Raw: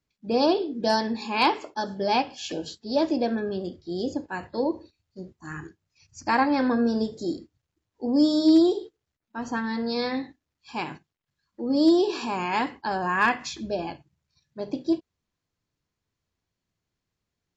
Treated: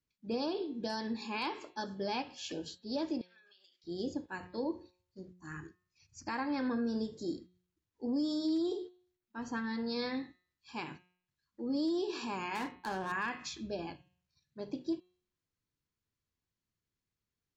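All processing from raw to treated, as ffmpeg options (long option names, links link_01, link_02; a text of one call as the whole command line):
ffmpeg -i in.wav -filter_complex "[0:a]asettb=1/sr,asplit=3[link_01][link_02][link_03];[link_01]atrim=end=3.214[link_04];[link_02]atrim=start=3.21:end=3.84,asetpts=PTS-STARTPTS,afade=type=in:duration=0.004:curve=qsin,afade=type=out:start_time=0.626:duration=0.004:curve=qsin,highpass=frequency=2500:width_type=q:width=1.5,acompressor=threshold=-52dB:ratio=10:attack=3.2:release=140:knee=1:detection=peak[link_05];[link_03]atrim=start=3.836[link_06];[link_04][link_05]acrossfade=duration=0.004:curve1=hsin:curve2=qsin[link_07];[link_07][link_06]acrossfade=duration=0.004:curve1=qsin:curve2=hsin,asettb=1/sr,asplit=3[link_08][link_09][link_10];[link_08]atrim=end=12.554[link_11];[link_09]atrim=start=12.55:end=13.12,asetpts=PTS-STARTPTS,afade=type=in:duration=0.004:curve=qsin,afade=type=out:start_time=0.566:duration=0.004:curve=qsin,highpass=54,adynamicsmooth=sensitivity=7.5:basefreq=940,asplit=2[link_12][link_13];[link_13]adelay=32,volume=-10dB[link_14];[link_12][link_14]amix=inputs=2:normalize=0,atrim=end_sample=25137[link_15];[link_10]atrim=start=13.116[link_16];[link_11][link_15]acrossfade=duration=0.004:curve1=hsin:curve2=qsin[link_17];[link_17][link_16]acrossfade=duration=0.004:curve1=qsin:curve2=hsin,equalizer=frequency=690:width=2:gain=-5.5,bandreject=frequency=180.3:width_type=h:width=4,bandreject=frequency=360.6:width_type=h:width=4,bandreject=frequency=540.9:width_type=h:width=4,bandreject=frequency=721.2:width_type=h:width=4,bandreject=frequency=901.5:width_type=h:width=4,bandreject=frequency=1081.8:width_type=h:width=4,bandreject=frequency=1262.1:width_type=h:width=4,bandreject=frequency=1442.4:width_type=h:width=4,bandreject=frequency=1622.7:width_type=h:width=4,bandreject=frequency=1803:width_type=h:width=4,bandreject=frequency=1983.3:width_type=h:width=4,bandreject=frequency=2163.6:width_type=h:width=4,bandreject=frequency=2343.9:width_type=h:width=4,bandreject=frequency=2524.2:width_type=h:width=4,bandreject=frequency=2704.5:width_type=h:width=4,bandreject=frequency=2884.8:width_type=h:width=4,bandreject=frequency=3065.1:width_type=h:width=4,bandreject=frequency=3245.4:width_type=h:width=4,bandreject=frequency=3425.7:width_type=h:width=4,bandreject=frequency=3606:width_type=h:width=4,bandreject=frequency=3786.3:width_type=h:width=4,bandreject=frequency=3966.6:width_type=h:width=4,bandreject=frequency=4146.9:width_type=h:width=4,bandreject=frequency=4327.2:width_type=h:width=4,alimiter=limit=-19dB:level=0:latency=1:release=130,volume=-7.5dB" out.wav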